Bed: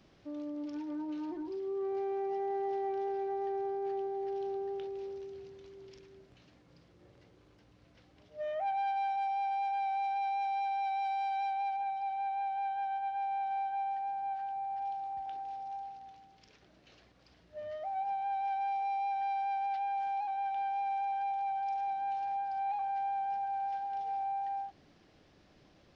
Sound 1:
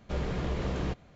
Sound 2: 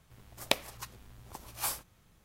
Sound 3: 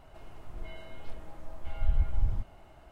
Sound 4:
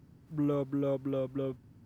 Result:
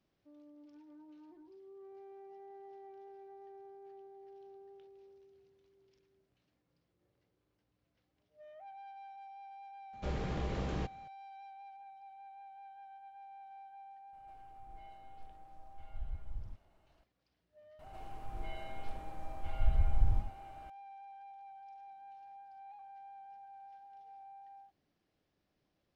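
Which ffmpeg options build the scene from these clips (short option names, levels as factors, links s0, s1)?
-filter_complex "[3:a]asplit=2[s0][s1];[0:a]volume=0.126[s2];[s1]aecho=1:1:80:0.422[s3];[1:a]atrim=end=1.15,asetpts=PTS-STARTPTS,volume=0.562,afade=t=in:d=0.004:c=hsin,afade=t=out:st=1.146:d=0.004:c=hsin,adelay=9930[s4];[s0]atrim=end=2.91,asetpts=PTS-STARTPTS,volume=0.168,afade=t=in:d=0.004:c=hsin,afade=t=out:st=2.906:d=0.004:c=hsin,adelay=14130[s5];[s3]atrim=end=2.91,asetpts=PTS-STARTPTS,volume=0.794,afade=t=in:d=0.004:c=hsin,afade=t=out:st=2.906:d=0.004:c=hsin,adelay=17790[s6];[s2][s4][s5][s6]amix=inputs=4:normalize=0"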